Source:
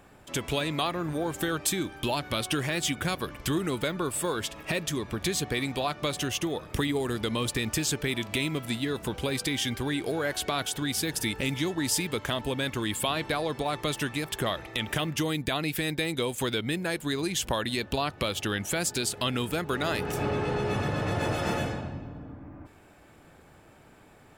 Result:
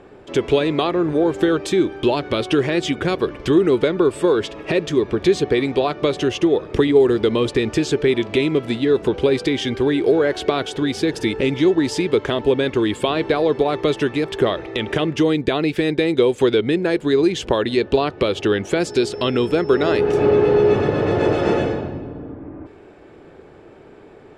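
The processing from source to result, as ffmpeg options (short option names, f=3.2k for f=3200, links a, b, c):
-filter_complex "[0:a]asettb=1/sr,asplit=3[a][b][c];[a]atrim=end=18.804[d];[b]atrim=start=18.8:end=19.97,asetpts=PTS-STARTPTS,afade=t=in:d=0.004:c=qsin,afade=t=out:st=1.166:d=0.004:c=qsin,aeval=exprs='val(0)+0.00501*sin(2*PI*5300*n/s)':c=same[e];[c]atrim=start=19.966[f];[d][e]acrossfade=d=0.004:c1=hsin:c2=qsin[g];[g][f]acrossfade=d=0.004:c1=qsin:c2=hsin,lowpass=4.5k,equalizer=f=400:w=1.6:g=13.5,volume=5dB"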